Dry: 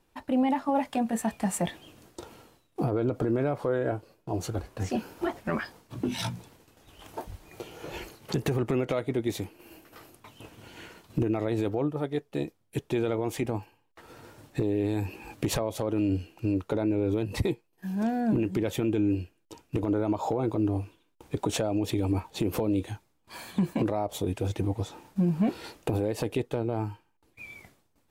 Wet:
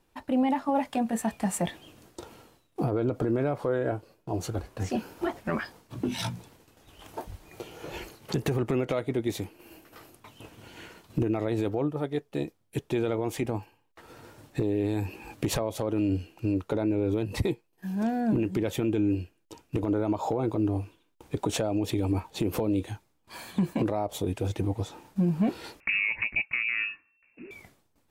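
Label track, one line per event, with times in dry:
25.800000	27.510000	inverted band carrier 2700 Hz

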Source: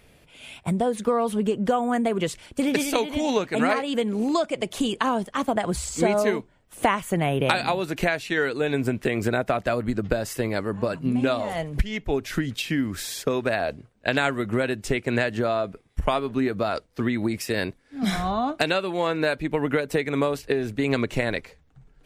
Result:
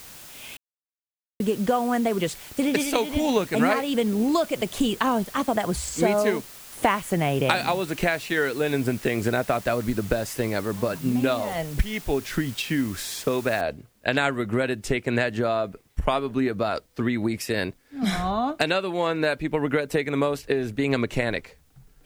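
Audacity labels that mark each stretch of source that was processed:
0.570000	1.400000	mute
3.080000	5.410000	low shelf 150 Hz +7.5 dB
13.610000	13.610000	noise floor step -44 dB -68 dB

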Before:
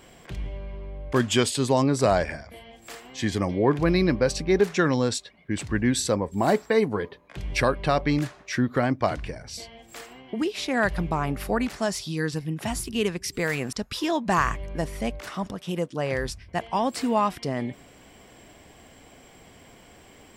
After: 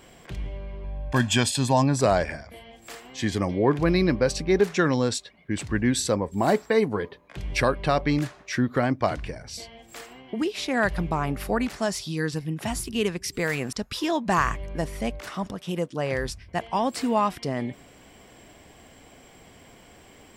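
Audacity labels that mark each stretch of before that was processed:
0.840000	2.010000	comb 1.2 ms, depth 64%

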